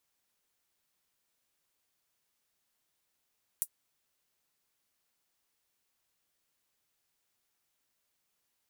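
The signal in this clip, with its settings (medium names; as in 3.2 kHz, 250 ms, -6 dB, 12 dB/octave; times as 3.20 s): closed hi-hat, high-pass 9.3 kHz, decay 0.07 s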